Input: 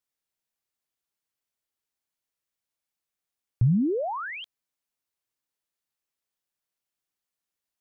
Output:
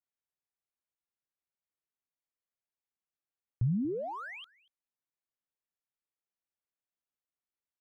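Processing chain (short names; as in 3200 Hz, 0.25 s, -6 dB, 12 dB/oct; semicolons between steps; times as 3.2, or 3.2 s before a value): Wiener smoothing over 9 samples; on a send: echo 0.236 s -23.5 dB; on the sum: gain -8 dB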